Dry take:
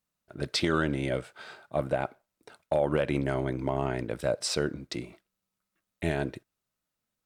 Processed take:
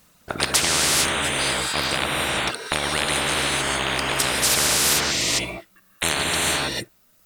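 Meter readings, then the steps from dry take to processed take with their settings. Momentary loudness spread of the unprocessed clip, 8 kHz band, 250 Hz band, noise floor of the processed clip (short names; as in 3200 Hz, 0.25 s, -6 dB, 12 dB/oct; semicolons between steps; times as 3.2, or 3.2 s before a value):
12 LU, +22.5 dB, +1.0 dB, -59 dBFS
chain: reverb removal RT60 1.6 s; non-linear reverb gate 0.47 s rising, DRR -4.5 dB; spectral compressor 10:1; gain +6.5 dB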